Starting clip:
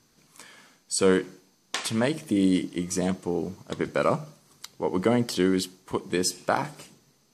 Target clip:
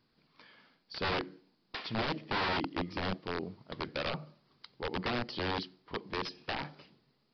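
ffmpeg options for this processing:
ffmpeg -i in.wav -filter_complex "[0:a]asplit=3[link_01][link_02][link_03];[link_01]afade=type=out:start_time=1.13:duration=0.02[link_04];[link_02]adynamicequalizer=threshold=0.0224:dfrequency=290:dqfactor=1.3:tfrequency=290:tqfactor=1.3:attack=5:release=100:ratio=0.375:range=3:mode=boostabove:tftype=bell,afade=type=in:start_time=1.13:duration=0.02,afade=type=out:start_time=3.16:duration=0.02[link_05];[link_03]afade=type=in:start_time=3.16:duration=0.02[link_06];[link_04][link_05][link_06]amix=inputs=3:normalize=0,aeval=exprs='(mod(7.94*val(0)+1,2)-1)/7.94':channel_layout=same,aresample=11025,aresample=44100,volume=-8.5dB" out.wav

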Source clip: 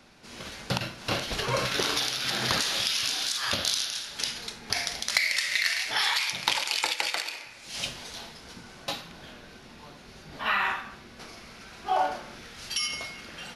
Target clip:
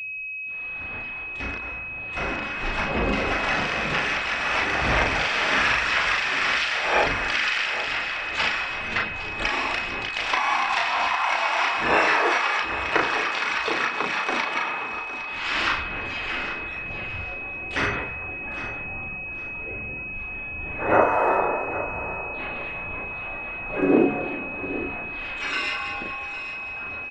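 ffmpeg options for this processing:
ffmpeg -i in.wav -filter_complex "[0:a]afftfilt=real='re*gte(hypot(re,im),0.00501)':imag='im*gte(hypot(re,im),0.00501)':win_size=1024:overlap=0.75,equalizer=frequency=270:width=0.4:gain=-4,bandreject=frequency=237.4:width_type=h:width=4,bandreject=frequency=474.8:width_type=h:width=4,bandreject=frequency=712.2:width_type=h:width=4,bandreject=frequency=949.6:width_type=h:width=4,alimiter=limit=-20.5dB:level=0:latency=1:release=271,dynaudnorm=framelen=440:gausssize=7:maxgain=11dB,aphaser=in_gain=1:out_gain=1:delay=1.8:decay=0.41:speed=2:type=sinusoidal,asplit=4[link_01][link_02][link_03][link_04];[link_02]asetrate=33038,aresample=44100,atempo=1.33484,volume=-3dB[link_05];[link_03]asetrate=58866,aresample=44100,atempo=0.749154,volume=-12dB[link_06];[link_04]asetrate=66075,aresample=44100,atempo=0.66742,volume=-16dB[link_07];[link_01][link_05][link_06][link_07]amix=inputs=4:normalize=0,flanger=delay=16.5:depth=5.6:speed=0.17,aeval=exprs='val(0)+0.0316*sin(2*PI*5100*n/s)':channel_layout=same,asplit=2[link_08][link_09];[link_09]aecho=0:1:404|808|1212:0.224|0.0582|0.0151[link_10];[link_08][link_10]amix=inputs=2:normalize=0,asetrate=22050,aresample=44100" out.wav

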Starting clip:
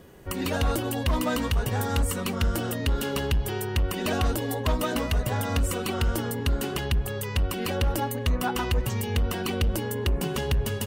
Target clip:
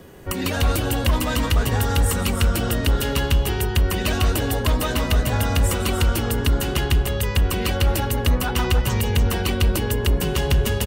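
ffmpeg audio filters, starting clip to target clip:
ffmpeg -i in.wav -filter_complex "[0:a]acrossover=split=160|1400[link_01][link_02][link_03];[link_02]alimiter=level_in=3dB:limit=-24dB:level=0:latency=1,volume=-3dB[link_04];[link_01][link_04][link_03]amix=inputs=3:normalize=0,aecho=1:1:160.3|291.5:0.282|0.398,volume=6dB" out.wav

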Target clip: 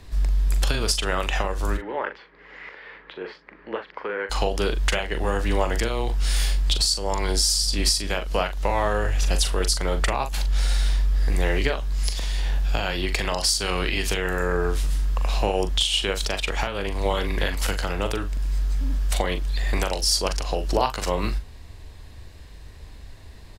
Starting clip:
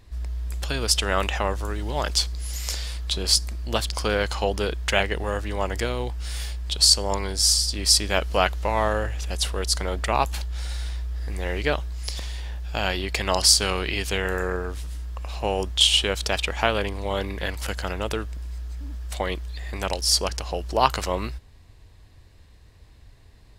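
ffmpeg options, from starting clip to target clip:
ffmpeg -i in.wav -filter_complex "[0:a]acompressor=threshold=-27dB:ratio=4,alimiter=limit=-17.5dB:level=0:latency=1:release=467,afreqshift=-13,asplit=3[link_01][link_02][link_03];[link_01]afade=type=out:start_time=1.76:duration=0.02[link_04];[link_02]highpass=420,equalizer=frequency=430:width_type=q:width=4:gain=3,equalizer=frequency=690:width_type=q:width=4:gain=-9,equalizer=frequency=1200:width_type=q:width=4:gain=-3,equalizer=frequency=1900:width_type=q:width=4:gain=5,lowpass=frequency=2000:width=0.5412,lowpass=frequency=2000:width=1.3066,afade=type=in:start_time=1.76:duration=0.02,afade=type=out:start_time=4.29:duration=0.02[link_05];[link_03]afade=type=in:start_time=4.29:duration=0.02[link_06];[link_04][link_05][link_06]amix=inputs=3:normalize=0,asplit=2[link_07][link_08];[link_08]adelay=41,volume=-8.5dB[link_09];[link_07][link_09]amix=inputs=2:normalize=0,volume=8dB" out.wav

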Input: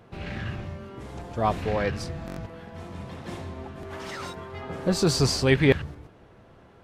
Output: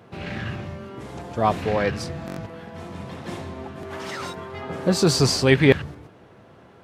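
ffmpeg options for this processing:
ffmpeg -i in.wav -af "highpass=98,volume=4dB" out.wav

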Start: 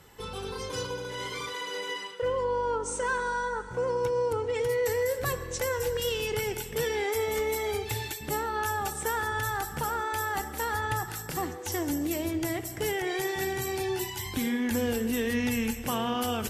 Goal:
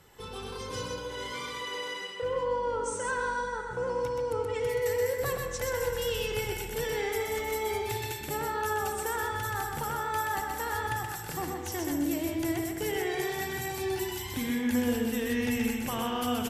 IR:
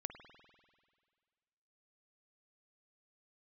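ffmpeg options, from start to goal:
-filter_complex "[0:a]aecho=1:1:126:0.631[link_01];[1:a]atrim=start_sample=2205[link_02];[link_01][link_02]afir=irnorm=-1:irlink=0"

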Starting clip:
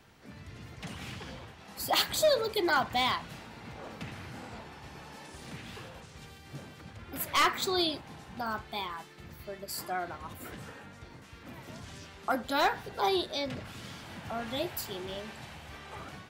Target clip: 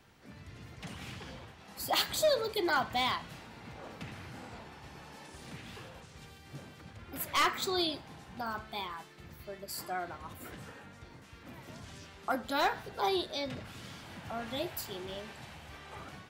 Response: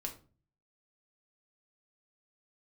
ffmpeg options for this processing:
-af "bandreject=frequency=217.4:width_type=h:width=4,bandreject=frequency=434.8:width_type=h:width=4,bandreject=frequency=652.2:width_type=h:width=4,bandreject=frequency=869.6:width_type=h:width=4,bandreject=frequency=1087:width_type=h:width=4,bandreject=frequency=1304.4:width_type=h:width=4,bandreject=frequency=1521.8:width_type=h:width=4,bandreject=frequency=1739.2:width_type=h:width=4,bandreject=frequency=1956.6:width_type=h:width=4,bandreject=frequency=2174:width_type=h:width=4,bandreject=frequency=2391.4:width_type=h:width=4,bandreject=frequency=2608.8:width_type=h:width=4,bandreject=frequency=2826.2:width_type=h:width=4,bandreject=frequency=3043.6:width_type=h:width=4,bandreject=frequency=3261:width_type=h:width=4,bandreject=frequency=3478.4:width_type=h:width=4,bandreject=frequency=3695.8:width_type=h:width=4,bandreject=frequency=3913.2:width_type=h:width=4,bandreject=frequency=4130.6:width_type=h:width=4,bandreject=frequency=4348:width_type=h:width=4,bandreject=frequency=4565.4:width_type=h:width=4,bandreject=frequency=4782.8:width_type=h:width=4,bandreject=frequency=5000.2:width_type=h:width=4,bandreject=frequency=5217.6:width_type=h:width=4,bandreject=frequency=5435:width_type=h:width=4,bandreject=frequency=5652.4:width_type=h:width=4,bandreject=frequency=5869.8:width_type=h:width=4,bandreject=frequency=6087.2:width_type=h:width=4,bandreject=frequency=6304.6:width_type=h:width=4,bandreject=frequency=6522:width_type=h:width=4,bandreject=frequency=6739.4:width_type=h:width=4,bandreject=frequency=6956.8:width_type=h:width=4,bandreject=frequency=7174.2:width_type=h:width=4,bandreject=frequency=7391.6:width_type=h:width=4,bandreject=frequency=7609:width_type=h:width=4,bandreject=frequency=7826.4:width_type=h:width=4,volume=-2.5dB"

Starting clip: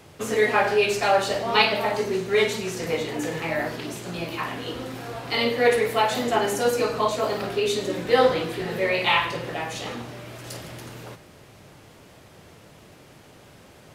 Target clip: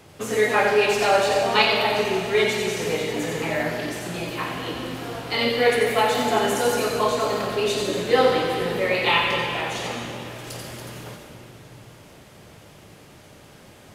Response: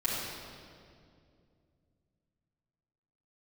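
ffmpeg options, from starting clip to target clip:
-filter_complex "[0:a]asplit=2[link_01][link_02];[link_02]highshelf=frequency=3500:gain=8.5[link_03];[1:a]atrim=start_sample=2205,asetrate=29547,aresample=44100,adelay=84[link_04];[link_03][link_04]afir=irnorm=-1:irlink=0,volume=-15.5dB[link_05];[link_01][link_05]amix=inputs=2:normalize=0"

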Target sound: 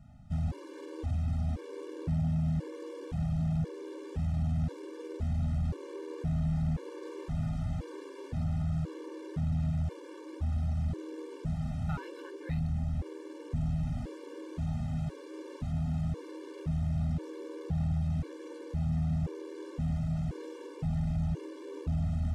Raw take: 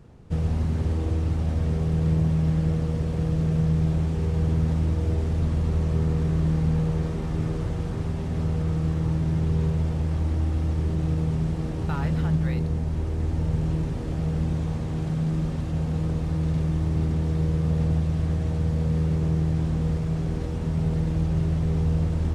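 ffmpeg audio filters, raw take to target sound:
ffmpeg -i in.wav -af "aeval=exprs='0.251*(cos(1*acos(clip(val(0)/0.251,-1,1)))-cos(1*PI/2))+0.0398*(cos(5*acos(clip(val(0)/0.251,-1,1)))-cos(5*PI/2))':channel_layout=same,afftfilt=real='re*gt(sin(2*PI*0.96*pts/sr)*(1-2*mod(floor(b*sr/1024/300),2)),0)':imag='im*gt(sin(2*PI*0.96*pts/sr)*(1-2*mod(floor(b*sr/1024/300),2)),0)':win_size=1024:overlap=0.75,volume=-9dB" out.wav

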